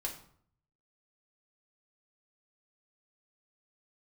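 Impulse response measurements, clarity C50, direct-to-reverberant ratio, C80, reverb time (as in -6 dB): 9.0 dB, -0.5 dB, 12.5 dB, 0.60 s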